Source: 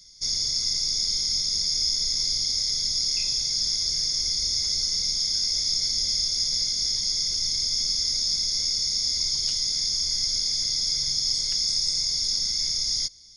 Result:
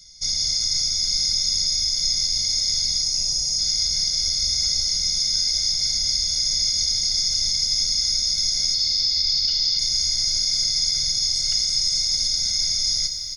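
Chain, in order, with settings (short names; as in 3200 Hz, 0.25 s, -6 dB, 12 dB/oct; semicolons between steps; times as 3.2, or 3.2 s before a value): 3.02–3.59 band shelf 2500 Hz -13 dB; comb 1.4 ms, depth 99%; 8.74–9.79 resonant high shelf 6500 Hz -13 dB, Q 3; limiter -13.5 dBFS, peak gain reduction 8.5 dB; Schroeder reverb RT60 2.8 s, combs from 31 ms, DRR 6.5 dB; lo-fi delay 0.27 s, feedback 35%, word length 8-bit, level -12 dB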